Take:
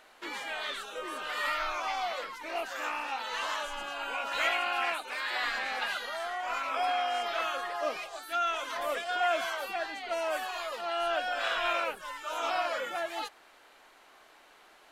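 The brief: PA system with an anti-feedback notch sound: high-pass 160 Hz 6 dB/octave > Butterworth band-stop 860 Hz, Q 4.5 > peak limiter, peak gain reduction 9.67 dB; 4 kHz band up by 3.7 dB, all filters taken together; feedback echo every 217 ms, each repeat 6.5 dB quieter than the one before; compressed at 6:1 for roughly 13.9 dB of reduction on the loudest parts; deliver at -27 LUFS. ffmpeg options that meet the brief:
-af "equalizer=f=4000:t=o:g=5,acompressor=threshold=0.0112:ratio=6,highpass=f=160:p=1,asuperstop=centerf=860:order=8:qfactor=4.5,aecho=1:1:217|434|651|868|1085|1302:0.473|0.222|0.105|0.0491|0.0231|0.0109,volume=8.41,alimiter=limit=0.106:level=0:latency=1"

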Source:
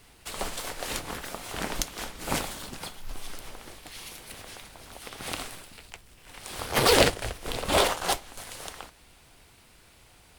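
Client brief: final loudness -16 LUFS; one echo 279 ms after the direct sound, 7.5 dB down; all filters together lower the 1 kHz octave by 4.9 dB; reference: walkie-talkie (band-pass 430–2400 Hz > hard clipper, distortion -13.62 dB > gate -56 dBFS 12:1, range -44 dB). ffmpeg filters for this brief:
-af "highpass=430,lowpass=2400,equalizer=f=1000:t=o:g=-6,aecho=1:1:279:0.422,asoftclip=type=hard:threshold=0.0891,agate=range=0.00631:threshold=0.00158:ratio=12,volume=7.94"

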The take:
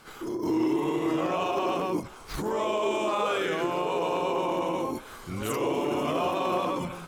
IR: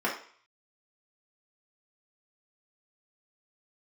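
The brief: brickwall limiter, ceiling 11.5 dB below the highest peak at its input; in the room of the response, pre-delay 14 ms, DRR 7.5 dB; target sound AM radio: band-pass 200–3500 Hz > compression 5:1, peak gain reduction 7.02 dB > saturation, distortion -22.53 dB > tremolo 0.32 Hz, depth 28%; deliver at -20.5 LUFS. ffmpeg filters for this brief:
-filter_complex "[0:a]alimiter=level_in=1.5:limit=0.0631:level=0:latency=1,volume=0.668,asplit=2[s0][s1];[1:a]atrim=start_sample=2205,adelay=14[s2];[s1][s2]afir=irnorm=-1:irlink=0,volume=0.119[s3];[s0][s3]amix=inputs=2:normalize=0,highpass=200,lowpass=3500,acompressor=threshold=0.0158:ratio=5,asoftclip=threshold=0.0282,tremolo=f=0.32:d=0.28,volume=11.9"

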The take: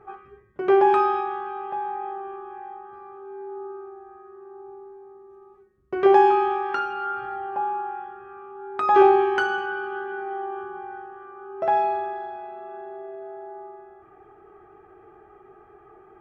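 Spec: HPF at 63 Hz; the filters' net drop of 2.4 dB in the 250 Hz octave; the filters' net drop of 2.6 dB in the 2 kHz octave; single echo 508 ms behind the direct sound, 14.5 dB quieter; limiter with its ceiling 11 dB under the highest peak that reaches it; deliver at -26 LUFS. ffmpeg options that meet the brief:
-af "highpass=63,equalizer=f=250:t=o:g=-6,equalizer=f=2000:t=o:g=-4,alimiter=limit=0.141:level=0:latency=1,aecho=1:1:508:0.188,volume=1.5"

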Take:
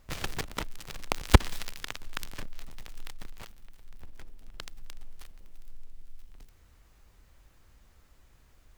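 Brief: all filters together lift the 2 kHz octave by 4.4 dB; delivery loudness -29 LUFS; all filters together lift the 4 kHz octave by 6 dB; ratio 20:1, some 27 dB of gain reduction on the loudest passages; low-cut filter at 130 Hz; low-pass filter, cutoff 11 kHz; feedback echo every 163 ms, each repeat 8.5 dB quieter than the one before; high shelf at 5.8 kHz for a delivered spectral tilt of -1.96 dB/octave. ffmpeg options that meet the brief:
-af "highpass=130,lowpass=11000,equalizer=f=2000:t=o:g=4,equalizer=f=4000:t=o:g=9,highshelf=f=5800:g=-7.5,acompressor=threshold=0.01:ratio=20,aecho=1:1:163|326|489|652:0.376|0.143|0.0543|0.0206,volume=8.91"

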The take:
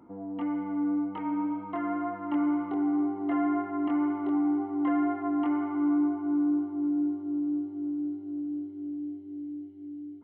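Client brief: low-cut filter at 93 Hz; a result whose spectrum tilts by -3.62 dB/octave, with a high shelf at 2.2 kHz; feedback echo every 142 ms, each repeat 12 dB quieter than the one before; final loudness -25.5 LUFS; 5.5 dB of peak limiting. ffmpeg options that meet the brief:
-af "highpass=93,highshelf=f=2200:g=-4,alimiter=limit=0.0631:level=0:latency=1,aecho=1:1:142|284|426:0.251|0.0628|0.0157,volume=2.24"

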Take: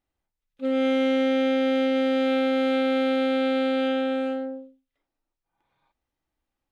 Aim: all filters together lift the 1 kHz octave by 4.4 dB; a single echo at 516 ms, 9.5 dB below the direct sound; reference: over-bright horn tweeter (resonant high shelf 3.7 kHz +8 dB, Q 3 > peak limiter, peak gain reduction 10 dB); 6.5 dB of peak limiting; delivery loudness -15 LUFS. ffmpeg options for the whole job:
-af "equalizer=f=1000:t=o:g=7.5,alimiter=limit=0.106:level=0:latency=1,highshelf=f=3700:t=q:w=3:g=8,aecho=1:1:516:0.335,volume=10.6,alimiter=limit=0.473:level=0:latency=1"

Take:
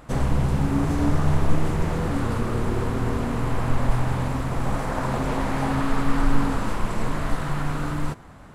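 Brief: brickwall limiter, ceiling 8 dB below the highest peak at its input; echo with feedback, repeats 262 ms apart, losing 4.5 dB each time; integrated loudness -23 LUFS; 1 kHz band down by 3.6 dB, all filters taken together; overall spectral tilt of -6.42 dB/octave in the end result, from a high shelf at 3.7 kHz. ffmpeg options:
-af "equalizer=f=1000:t=o:g=-4,highshelf=f=3700:g=-5.5,alimiter=limit=0.178:level=0:latency=1,aecho=1:1:262|524|786|1048|1310|1572|1834|2096|2358:0.596|0.357|0.214|0.129|0.0772|0.0463|0.0278|0.0167|0.01,volume=1.33"

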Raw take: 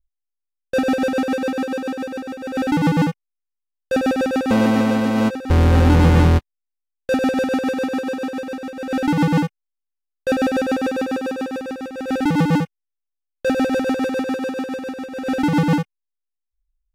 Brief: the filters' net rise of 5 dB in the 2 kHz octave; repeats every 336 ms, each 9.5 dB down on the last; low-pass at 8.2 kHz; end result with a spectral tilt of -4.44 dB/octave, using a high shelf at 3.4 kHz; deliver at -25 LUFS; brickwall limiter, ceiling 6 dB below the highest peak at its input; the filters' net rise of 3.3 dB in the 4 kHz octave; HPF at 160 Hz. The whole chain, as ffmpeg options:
-af "highpass=160,lowpass=8200,equalizer=f=2000:t=o:g=7.5,highshelf=f=3400:g=-6,equalizer=f=4000:t=o:g=5.5,alimiter=limit=0.376:level=0:latency=1,aecho=1:1:336|672|1008|1344:0.335|0.111|0.0365|0.012,volume=0.631"

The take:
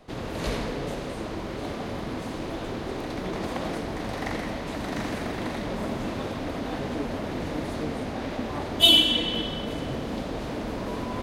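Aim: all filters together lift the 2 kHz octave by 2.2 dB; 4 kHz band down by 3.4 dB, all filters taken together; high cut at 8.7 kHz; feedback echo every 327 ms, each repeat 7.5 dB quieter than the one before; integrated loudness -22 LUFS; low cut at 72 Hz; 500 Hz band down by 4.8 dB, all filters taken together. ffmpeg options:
-af "highpass=72,lowpass=8700,equalizer=f=500:t=o:g=-6.5,equalizer=f=2000:t=o:g=5.5,equalizer=f=4000:t=o:g=-8,aecho=1:1:327|654|981|1308|1635:0.422|0.177|0.0744|0.0312|0.0131,volume=2.24"

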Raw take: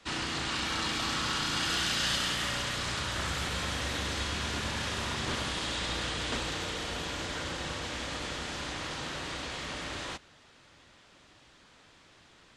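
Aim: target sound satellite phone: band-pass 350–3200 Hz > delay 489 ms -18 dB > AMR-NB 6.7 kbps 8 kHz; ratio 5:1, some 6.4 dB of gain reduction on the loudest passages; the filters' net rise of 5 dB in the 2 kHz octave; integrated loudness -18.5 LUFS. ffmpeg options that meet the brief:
-af "equalizer=f=2000:t=o:g=7,acompressor=threshold=0.0282:ratio=5,highpass=350,lowpass=3200,aecho=1:1:489:0.126,volume=11.9" -ar 8000 -c:a libopencore_amrnb -b:a 6700

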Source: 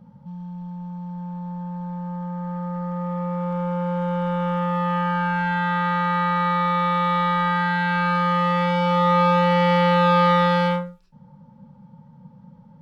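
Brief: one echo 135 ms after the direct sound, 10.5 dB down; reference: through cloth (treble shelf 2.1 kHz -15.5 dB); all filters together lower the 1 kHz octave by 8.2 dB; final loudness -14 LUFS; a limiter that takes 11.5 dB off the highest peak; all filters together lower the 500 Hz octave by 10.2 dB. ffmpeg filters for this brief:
-af "equalizer=f=500:t=o:g=-8.5,equalizer=f=1000:t=o:g=-4,alimiter=limit=0.0668:level=0:latency=1,highshelf=f=2100:g=-15.5,aecho=1:1:135:0.299,volume=7.94"

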